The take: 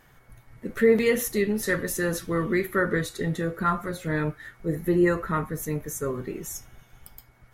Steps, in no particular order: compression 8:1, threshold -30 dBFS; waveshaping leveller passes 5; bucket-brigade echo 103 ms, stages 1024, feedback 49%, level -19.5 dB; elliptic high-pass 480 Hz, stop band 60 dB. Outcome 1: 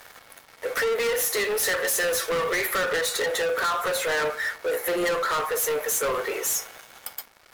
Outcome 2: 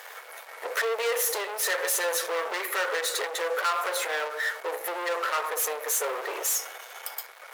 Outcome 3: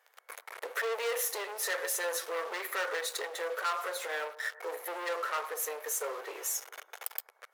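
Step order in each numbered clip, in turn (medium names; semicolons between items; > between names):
elliptic high-pass > compression > waveshaping leveller > bucket-brigade echo; bucket-brigade echo > compression > waveshaping leveller > elliptic high-pass; waveshaping leveller > bucket-brigade echo > compression > elliptic high-pass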